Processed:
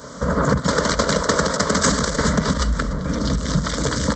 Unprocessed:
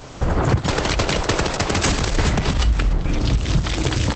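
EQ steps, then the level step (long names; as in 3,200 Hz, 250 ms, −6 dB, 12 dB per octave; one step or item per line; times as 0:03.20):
high-pass filter 62 Hz 24 dB per octave
phaser with its sweep stopped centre 520 Hz, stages 8
+5.5 dB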